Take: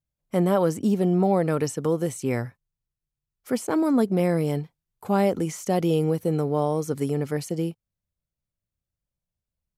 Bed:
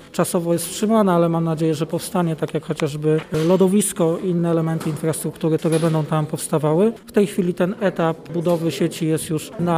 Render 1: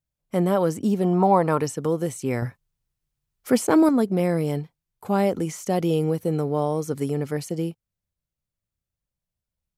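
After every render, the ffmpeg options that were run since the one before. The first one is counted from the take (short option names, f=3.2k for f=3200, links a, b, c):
-filter_complex "[0:a]asettb=1/sr,asplit=3[a][b][c];[a]atrim=end=1.044[d];[b]atrim=start=1.04:end=1.61,asetpts=PTS-STARTPTS,afade=t=in:d=0.004:c=qsin,afade=t=out:st=0.566:d=0.004:c=qsin,equalizer=f=990:w=2.2:g=15[e];[c]atrim=start=1.606[f];[d][e]acrossfade=d=0.004:c1=hsin:c2=qsin[g];[g][f]acrossfade=d=0.004:c1=qsin:c2=hsin,asettb=1/sr,asplit=3[h][i][j];[h]atrim=end=2.424[k];[i]atrim=start=2.42:end=3.89,asetpts=PTS-STARTPTS,afade=t=in:d=0.004:c=qsin,afade=t=out:st=1.466:d=0.004:c=qsin,acontrast=63[l];[j]atrim=start=3.886[m];[k][l]acrossfade=d=0.004:c1=hsin:c2=qsin[n];[n][m]acrossfade=d=0.004:c1=qsin:c2=hsin"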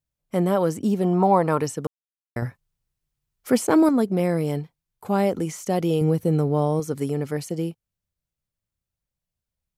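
-filter_complex "[0:a]asettb=1/sr,asplit=3[a][b][c];[a]atrim=end=6.014[d];[b]atrim=start=6.01:end=6.8,asetpts=PTS-STARTPTS,afade=t=in:d=0.004:c=qsin,afade=t=out:st=0.786:d=0.004:c=qsin,lowshelf=f=180:g=9[e];[c]atrim=start=6.796[f];[d][e]acrossfade=d=0.004:c1=hsin:c2=qsin[g];[g][f]acrossfade=d=0.004:c1=qsin:c2=hsin,asplit=3[h][i][j];[h]atrim=end=1.87,asetpts=PTS-STARTPTS,afade=t=out:st=1.866:d=0.004:c=hsin[k];[i]atrim=start=1.87:end=2.36,asetpts=PTS-STARTPTS,volume=0[l];[j]atrim=start=2.36,asetpts=PTS-STARTPTS,afade=t=in:d=0.004:c=hsin[m];[k][l][m]concat=n=3:v=0:a=1"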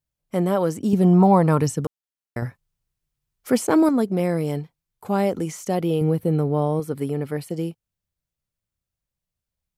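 -filter_complex "[0:a]asettb=1/sr,asplit=3[a][b][c];[a]atrim=end=0.934[d];[b]atrim=start=0.93:end=1.85,asetpts=PTS-STARTPTS,afade=t=in:d=0.004:c=qsin,afade=t=out:st=0.916:d=0.004:c=qsin,bass=f=250:g=10,treble=f=4k:g=3[e];[c]atrim=start=1.846[f];[d][e]acrossfade=d=0.004:c1=hsin:c2=qsin[g];[g][f]acrossfade=d=0.004:c1=qsin:c2=hsin,asettb=1/sr,asplit=3[h][i][j];[h]atrim=end=5.754[k];[i]atrim=start=5.75:end=7.5,asetpts=PTS-STARTPTS,afade=t=in:d=0.004:c=qsin,afade=t=out:st=1.746:d=0.004:c=qsin,equalizer=f=6.4k:w=2.2:g=-13.5[l];[j]atrim=start=7.496[m];[k][l]acrossfade=d=0.004:c1=hsin:c2=qsin[n];[n][m]acrossfade=d=0.004:c1=qsin:c2=hsin"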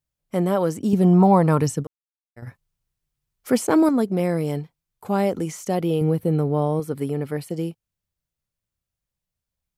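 -filter_complex "[0:a]asplit=3[a][b][c];[a]afade=t=out:st=1.82:d=0.02[d];[b]agate=range=-33dB:threshold=-18dB:ratio=3:release=100:detection=peak,afade=t=in:st=1.82:d=0.02,afade=t=out:st=2.46:d=0.02[e];[c]afade=t=in:st=2.46:d=0.02[f];[d][e][f]amix=inputs=3:normalize=0"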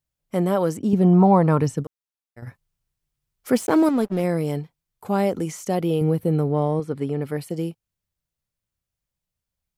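-filter_complex "[0:a]asettb=1/sr,asplit=3[a][b][c];[a]atrim=end=0.774[d];[b]atrim=start=0.77:end=1.78,asetpts=PTS-STARTPTS,afade=t=in:d=0.004:c=qsin,afade=t=out:st=1.006:d=0.004:c=qsin,highshelf=f=4.7k:g=-10[e];[c]atrim=start=1.776[f];[d][e]acrossfade=d=0.004:c1=hsin:c2=qsin[g];[g][f]acrossfade=d=0.004:c1=qsin:c2=hsin,asettb=1/sr,asplit=3[h][i][j];[h]atrim=end=3.574[k];[i]atrim=start=3.57:end=4.24,asetpts=PTS-STARTPTS,afade=t=in:d=0.004:c=qsin,afade=t=out:st=0.666:d=0.004:c=qsin,aeval=exprs='sgn(val(0))*max(abs(val(0))-0.0141,0)':c=same[l];[j]atrim=start=4.236[m];[k][l]acrossfade=d=0.004:c1=hsin:c2=qsin[n];[n][m]acrossfade=d=0.004:c1=qsin:c2=hsin,asettb=1/sr,asplit=3[o][p][q];[o]atrim=end=6.524[r];[p]atrim=start=6.52:end=7.22,asetpts=PTS-STARTPTS,afade=t=in:d=0.004:c=qsin,afade=t=out:st=0.696:d=0.004:c=qsin,adynamicsmooth=sensitivity=6.5:basefreq=5.6k[s];[q]atrim=start=7.216[t];[r][s]acrossfade=d=0.004:c1=hsin:c2=qsin[u];[u][t]acrossfade=d=0.004:c1=qsin:c2=hsin"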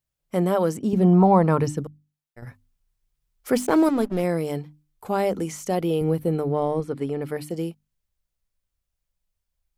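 -af "asubboost=boost=5:cutoff=50,bandreject=f=50:t=h:w=6,bandreject=f=100:t=h:w=6,bandreject=f=150:t=h:w=6,bandreject=f=200:t=h:w=6,bandreject=f=250:t=h:w=6,bandreject=f=300:t=h:w=6"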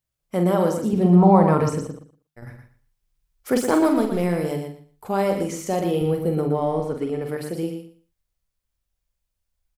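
-filter_complex "[0:a]asplit=2[a][b];[b]adelay=46,volume=-7dB[c];[a][c]amix=inputs=2:normalize=0,aecho=1:1:118|236|354:0.447|0.0804|0.0145"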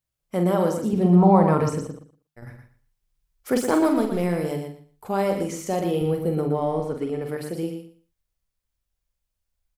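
-af "volume=-1.5dB"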